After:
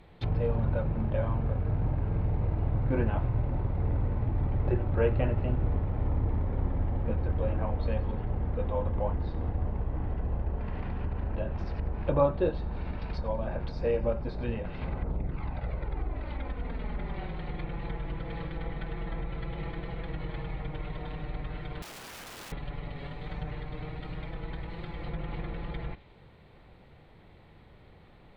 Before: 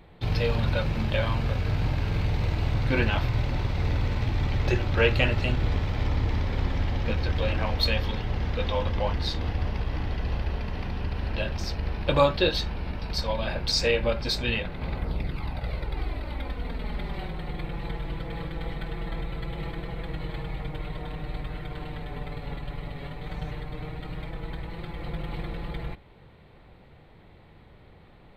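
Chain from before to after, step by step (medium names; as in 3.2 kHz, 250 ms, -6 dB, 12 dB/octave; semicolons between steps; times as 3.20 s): feedback echo behind a high-pass 88 ms, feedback 65%, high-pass 2.1 kHz, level -16.5 dB; low-pass that closes with the level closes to 940 Hz, closed at -24 dBFS; 21.82–22.52 s: integer overflow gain 37.5 dB; trim -2.5 dB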